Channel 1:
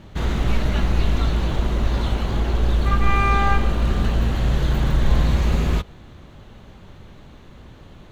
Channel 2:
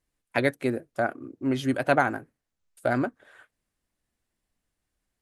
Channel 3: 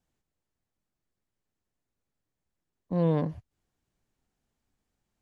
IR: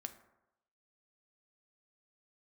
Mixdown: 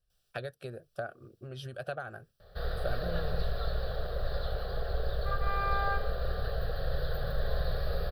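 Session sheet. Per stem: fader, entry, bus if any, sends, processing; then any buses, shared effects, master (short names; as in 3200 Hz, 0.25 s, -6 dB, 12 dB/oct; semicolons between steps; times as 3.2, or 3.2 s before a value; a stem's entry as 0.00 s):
-15.5 dB, 2.40 s, no bus, no send, octaver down 2 oct, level +2 dB; EQ curve 180 Hz 0 dB, 290 Hz -8 dB, 470 Hz +13 dB, 1300 Hz +6 dB, 1900 Hz +12 dB, 2700 Hz -6 dB, 4800 Hz +15 dB, 7000 Hz -15 dB, 12000 Hz +12 dB
-4.0 dB, 0.00 s, bus A, no send, low shelf 180 Hz +8.5 dB
+2.0 dB, 0.10 s, bus A, no send, high shelf 2300 Hz +11 dB
bus A: 0.0 dB, bell 6100 Hz +14.5 dB 0.55 oct; compressor 16:1, threshold -31 dBFS, peak gain reduction 13.5 dB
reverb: off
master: fixed phaser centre 1400 Hz, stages 8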